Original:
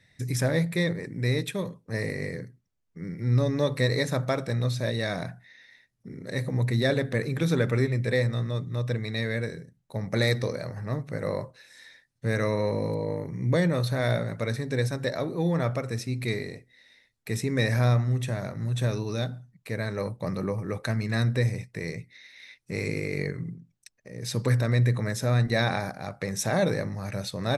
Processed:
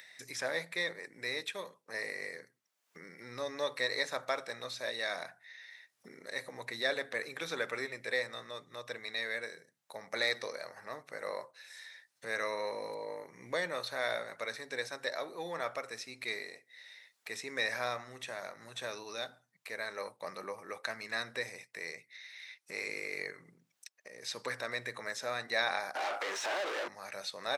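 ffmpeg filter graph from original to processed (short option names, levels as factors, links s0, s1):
-filter_complex "[0:a]asettb=1/sr,asplit=3[s0][s1][s2];[s0]atrim=end=25.954[s3];[s1]atrim=start=25.95:end=26.88,asetpts=PTS-STARTPTS,afade=t=in:d=0.004:c=qsin,afade=t=out:st=0.926:d=0.004:c=qsin,highpass=f=320:t=q:w=4,acompressor=threshold=0.0224:ratio=3:attack=3.2:release=140:knee=1:detection=peak,asplit=2[s4][s5];[s5]highpass=f=720:p=1,volume=44.7,asoftclip=type=tanh:threshold=0.0794[s6];[s4][s6]amix=inputs=2:normalize=0,lowpass=f=3700:p=1,volume=0.501[s7];[s2]atrim=start=26.876[s8];[s3][s7]acrossfade=d=0.004:c1=hsin:c2=qsin[s9];[s9][s8]acrossfade=d=0.004:c1=qsin:c2=hsin,acrossover=split=6600[s10][s11];[s11]acompressor=threshold=0.00224:ratio=4:attack=1:release=60[s12];[s10][s12]amix=inputs=2:normalize=0,highpass=740,acompressor=mode=upward:threshold=0.00794:ratio=2.5,volume=0.75"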